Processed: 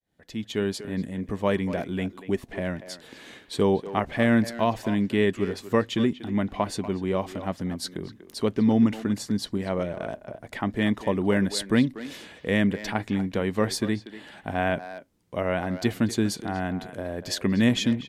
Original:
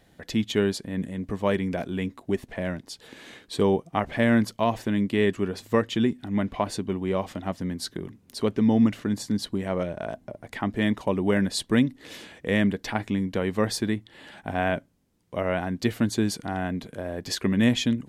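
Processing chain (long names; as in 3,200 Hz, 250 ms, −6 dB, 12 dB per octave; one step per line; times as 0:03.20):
fade in at the beginning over 0.91 s
far-end echo of a speakerphone 240 ms, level −12 dB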